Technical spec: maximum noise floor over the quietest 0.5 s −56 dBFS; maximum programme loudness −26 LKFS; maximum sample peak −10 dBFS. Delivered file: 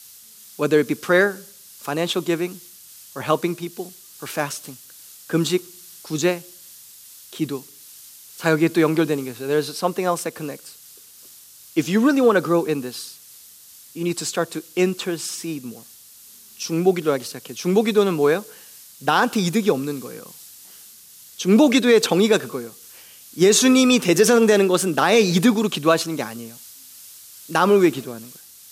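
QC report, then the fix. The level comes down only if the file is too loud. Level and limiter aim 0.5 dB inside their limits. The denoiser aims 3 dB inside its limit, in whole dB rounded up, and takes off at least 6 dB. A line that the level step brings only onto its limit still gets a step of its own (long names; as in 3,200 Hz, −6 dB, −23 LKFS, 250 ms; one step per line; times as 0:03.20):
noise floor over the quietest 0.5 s −46 dBFS: out of spec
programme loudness −20.0 LKFS: out of spec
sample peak −5.0 dBFS: out of spec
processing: broadband denoise 7 dB, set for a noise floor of −46 dBFS
level −6.5 dB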